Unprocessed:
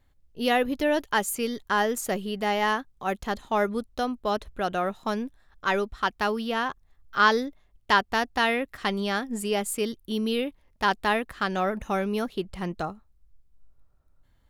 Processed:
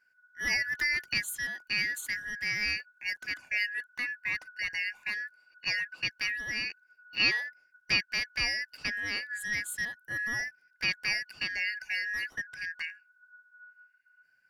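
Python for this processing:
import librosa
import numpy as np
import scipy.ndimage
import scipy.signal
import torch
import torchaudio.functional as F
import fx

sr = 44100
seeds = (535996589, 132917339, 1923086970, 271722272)

y = fx.band_shuffle(x, sr, order='3142')
y = fx.band_squash(y, sr, depth_pct=100, at=(0.53, 1.14))
y = y * 10.0 ** (-6.5 / 20.0)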